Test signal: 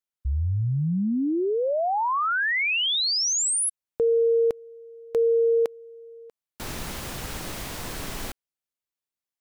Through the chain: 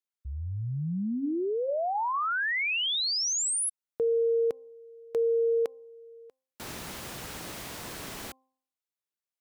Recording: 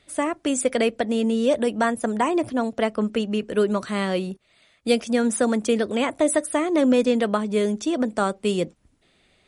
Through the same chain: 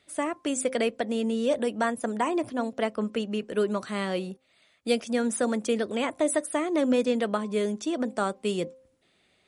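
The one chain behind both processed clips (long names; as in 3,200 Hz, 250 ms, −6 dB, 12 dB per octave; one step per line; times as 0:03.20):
high-pass filter 130 Hz 6 dB per octave
hum removal 261.7 Hz, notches 4
level −4.5 dB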